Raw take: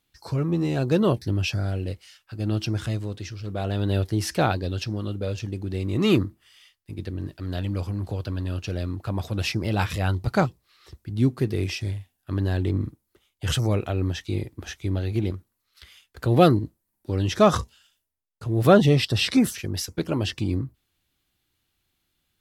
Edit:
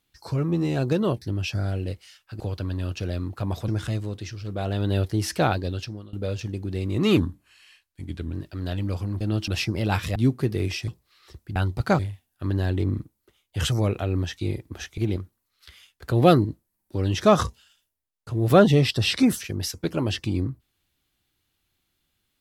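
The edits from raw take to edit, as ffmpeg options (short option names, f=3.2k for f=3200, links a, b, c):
-filter_complex "[0:a]asplit=15[a][b][c][d][e][f][g][h][i][j][k][l][m][n][o];[a]atrim=end=0.932[p];[b]atrim=start=0.928:end=1.552,asetpts=PTS-STARTPTS,volume=-3dB[q];[c]atrim=start=1.548:end=2.402[r];[d]atrim=start=8.068:end=9.352[s];[e]atrim=start=2.668:end=5.12,asetpts=PTS-STARTPTS,afade=t=out:st=1.992:d=0.46:silence=0.0707946[t];[f]atrim=start=5.12:end=6.164,asetpts=PTS-STARTPTS,afade=t=in:d=0.004:c=hsin:silence=0.0707946[u];[g]atrim=start=6.16:end=7.19,asetpts=PTS-STARTPTS,asetrate=39249,aresample=44100,atrim=end_sample=51037,asetpts=PTS-STARTPTS[v];[h]atrim=start=7.186:end=8.072[w];[i]atrim=start=2.398:end=2.672[x];[j]atrim=start=9.348:end=10.032[y];[k]atrim=start=11.138:end=11.862[z];[l]atrim=start=10.458:end=11.142[aa];[m]atrim=start=10.028:end=10.462[ab];[n]atrim=start=11.858:end=14.852[ac];[o]atrim=start=15.118[ad];[p][q]acrossfade=d=0.004:c1=hsin:c2=hsin[ae];[ae][r]acrossfade=d=0.004:c1=hsin:c2=hsin[af];[af][s]acrossfade=d=0.004:c1=hsin:c2=hsin[ag];[t][u]concat=n=2:v=0:a=1[ah];[ag][ah]acrossfade=d=0.004:c1=hsin:c2=hsin[ai];[ai][v]acrossfade=d=0.004:c1=hsin:c2=hsin[aj];[aj][w]acrossfade=d=0.004:c1=hsin:c2=hsin[ak];[ak][x]acrossfade=d=0.004:c1=hsin:c2=hsin[al];[al][y]acrossfade=d=0.004:c1=hsin:c2=hsin[am];[am][z]acrossfade=d=0.004:c1=hsin:c2=hsin[an];[an][aa]acrossfade=d=0.004:c1=hsin:c2=hsin[ao];[ao][ab]acrossfade=d=0.004:c1=hsin:c2=hsin[ap];[ap][ac]acrossfade=d=0.004:c1=hsin:c2=hsin[aq];[aq][ad]acrossfade=d=0.004:c1=hsin:c2=hsin"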